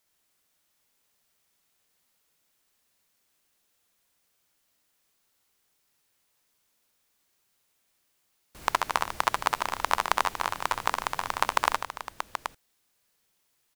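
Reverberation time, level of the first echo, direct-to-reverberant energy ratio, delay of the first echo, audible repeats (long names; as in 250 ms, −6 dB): no reverb audible, −3.5 dB, no reverb audible, 66 ms, 4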